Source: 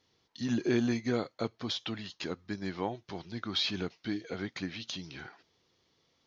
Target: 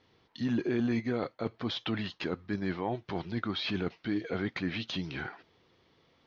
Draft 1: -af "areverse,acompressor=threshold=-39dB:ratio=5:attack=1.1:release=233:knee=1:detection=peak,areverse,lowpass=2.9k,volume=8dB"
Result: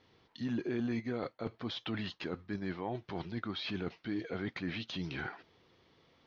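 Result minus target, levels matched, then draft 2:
compressor: peak gain reduction +5 dB
-af "areverse,acompressor=threshold=-32.5dB:ratio=5:attack=1.1:release=233:knee=1:detection=peak,areverse,lowpass=2.9k,volume=8dB"

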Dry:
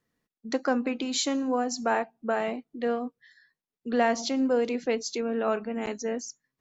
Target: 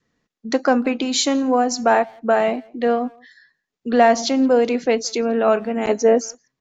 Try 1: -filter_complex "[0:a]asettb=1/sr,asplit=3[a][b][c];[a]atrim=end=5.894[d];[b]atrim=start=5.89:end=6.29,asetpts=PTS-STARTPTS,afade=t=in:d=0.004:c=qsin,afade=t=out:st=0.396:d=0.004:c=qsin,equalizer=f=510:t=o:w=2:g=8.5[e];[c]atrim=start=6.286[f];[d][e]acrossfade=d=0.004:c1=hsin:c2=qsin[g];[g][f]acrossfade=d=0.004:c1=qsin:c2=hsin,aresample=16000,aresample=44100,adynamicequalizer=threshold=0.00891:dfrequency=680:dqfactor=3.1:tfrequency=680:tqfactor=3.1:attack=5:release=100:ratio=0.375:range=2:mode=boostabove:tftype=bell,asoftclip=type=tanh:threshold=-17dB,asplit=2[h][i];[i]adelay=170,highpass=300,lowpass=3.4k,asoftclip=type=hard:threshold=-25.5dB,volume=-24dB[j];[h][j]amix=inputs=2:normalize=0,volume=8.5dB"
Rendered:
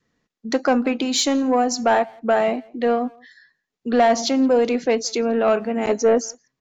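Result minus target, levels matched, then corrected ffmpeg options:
soft clip: distortion +15 dB
-filter_complex "[0:a]asettb=1/sr,asplit=3[a][b][c];[a]atrim=end=5.894[d];[b]atrim=start=5.89:end=6.29,asetpts=PTS-STARTPTS,afade=t=in:d=0.004:c=qsin,afade=t=out:st=0.396:d=0.004:c=qsin,equalizer=f=510:t=o:w=2:g=8.5[e];[c]atrim=start=6.286[f];[d][e]acrossfade=d=0.004:c1=hsin:c2=qsin[g];[g][f]acrossfade=d=0.004:c1=qsin:c2=hsin,aresample=16000,aresample=44100,adynamicequalizer=threshold=0.00891:dfrequency=680:dqfactor=3.1:tfrequency=680:tqfactor=3.1:attack=5:release=100:ratio=0.375:range=2:mode=boostabove:tftype=bell,asoftclip=type=tanh:threshold=-7.5dB,asplit=2[h][i];[i]adelay=170,highpass=300,lowpass=3.4k,asoftclip=type=hard:threshold=-25.5dB,volume=-24dB[j];[h][j]amix=inputs=2:normalize=0,volume=8.5dB"

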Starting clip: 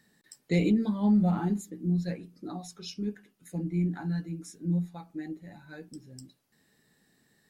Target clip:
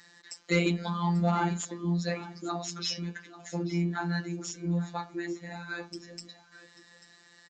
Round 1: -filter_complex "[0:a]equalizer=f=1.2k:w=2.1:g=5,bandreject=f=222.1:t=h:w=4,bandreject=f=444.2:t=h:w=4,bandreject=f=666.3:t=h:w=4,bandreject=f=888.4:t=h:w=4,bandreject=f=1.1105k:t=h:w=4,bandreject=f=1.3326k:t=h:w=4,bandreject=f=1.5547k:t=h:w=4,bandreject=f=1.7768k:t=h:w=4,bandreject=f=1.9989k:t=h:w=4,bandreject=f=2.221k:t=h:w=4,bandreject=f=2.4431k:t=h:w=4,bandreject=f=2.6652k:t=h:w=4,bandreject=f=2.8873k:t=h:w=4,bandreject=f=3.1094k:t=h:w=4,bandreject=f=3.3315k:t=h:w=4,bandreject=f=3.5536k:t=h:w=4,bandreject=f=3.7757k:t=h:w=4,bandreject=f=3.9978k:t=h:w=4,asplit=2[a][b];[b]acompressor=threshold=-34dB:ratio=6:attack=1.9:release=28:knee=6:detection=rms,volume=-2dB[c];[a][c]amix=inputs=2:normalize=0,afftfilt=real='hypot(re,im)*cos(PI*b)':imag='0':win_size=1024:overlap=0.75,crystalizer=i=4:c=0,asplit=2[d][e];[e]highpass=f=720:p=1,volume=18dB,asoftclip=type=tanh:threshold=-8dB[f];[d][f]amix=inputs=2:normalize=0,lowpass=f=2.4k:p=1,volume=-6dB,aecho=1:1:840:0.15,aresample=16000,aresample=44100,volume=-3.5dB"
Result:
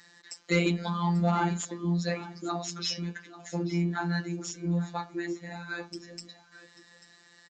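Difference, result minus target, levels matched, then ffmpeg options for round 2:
compressor: peak gain reduction -5.5 dB
-filter_complex "[0:a]equalizer=f=1.2k:w=2.1:g=5,bandreject=f=222.1:t=h:w=4,bandreject=f=444.2:t=h:w=4,bandreject=f=666.3:t=h:w=4,bandreject=f=888.4:t=h:w=4,bandreject=f=1.1105k:t=h:w=4,bandreject=f=1.3326k:t=h:w=4,bandreject=f=1.5547k:t=h:w=4,bandreject=f=1.7768k:t=h:w=4,bandreject=f=1.9989k:t=h:w=4,bandreject=f=2.221k:t=h:w=4,bandreject=f=2.4431k:t=h:w=4,bandreject=f=2.6652k:t=h:w=4,bandreject=f=2.8873k:t=h:w=4,bandreject=f=3.1094k:t=h:w=4,bandreject=f=3.3315k:t=h:w=4,bandreject=f=3.5536k:t=h:w=4,bandreject=f=3.7757k:t=h:w=4,bandreject=f=3.9978k:t=h:w=4,asplit=2[a][b];[b]acompressor=threshold=-40.5dB:ratio=6:attack=1.9:release=28:knee=6:detection=rms,volume=-2dB[c];[a][c]amix=inputs=2:normalize=0,afftfilt=real='hypot(re,im)*cos(PI*b)':imag='0':win_size=1024:overlap=0.75,crystalizer=i=4:c=0,asplit=2[d][e];[e]highpass=f=720:p=1,volume=18dB,asoftclip=type=tanh:threshold=-8dB[f];[d][f]amix=inputs=2:normalize=0,lowpass=f=2.4k:p=1,volume=-6dB,aecho=1:1:840:0.15,aresample=16000,aresample=44100,volume=-3.5dB"

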